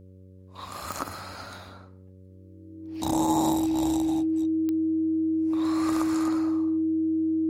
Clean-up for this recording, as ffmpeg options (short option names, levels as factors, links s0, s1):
-af "adeclick=t=4,bandreject=f=93.5:t=h:w=4,bandreject=f=187:t=h:w=4,bandreject=f=280.5:t=h:w=4,bandreject=f=374:t=h:w=4,bandreject=f=467.5:t=h:w=4,bandreject=f=561:t=h:w=4,bandreject=f=320:w=30"